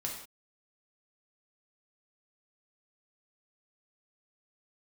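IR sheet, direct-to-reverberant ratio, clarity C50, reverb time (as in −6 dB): −2.0 dB, 4.5 dB, non-exponential decay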